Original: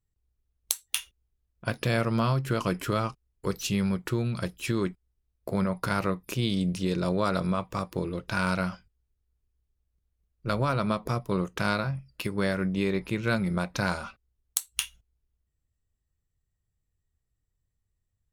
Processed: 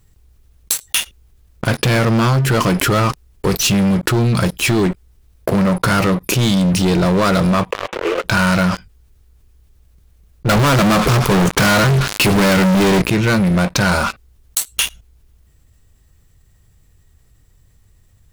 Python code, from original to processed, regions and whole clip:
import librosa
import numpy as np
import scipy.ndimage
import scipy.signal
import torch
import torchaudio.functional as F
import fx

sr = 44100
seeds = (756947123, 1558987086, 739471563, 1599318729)

y = fx.chain(x, sr, fx.cvsd(bps=16000),
    fx.steep_highpass(hz=420.0, slope=36),
    fx.over_compress(threshold_db=-41.0, ratio=-0.5), at=(7.72, 8.24))
y = fx.chain(y, sr, fx.echo_wet_highpass(ms=110, feedback_pct=71, hz=1600.0, wet_db=-23.0),
    fx.leveller(passes=5), at=(10.49, 13.02))
y = fx.leveller(y, sr, passes=5)
y = fx.env_flatten(y, sr, amount_pct=50)
y = y * 10.0 ** (-2.5 / 20.0)